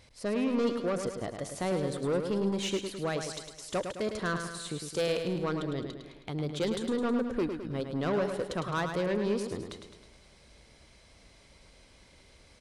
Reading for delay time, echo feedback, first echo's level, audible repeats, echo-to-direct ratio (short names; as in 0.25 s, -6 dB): 0.106 s, 54%, -7.0 dB, 6, -5.5 dB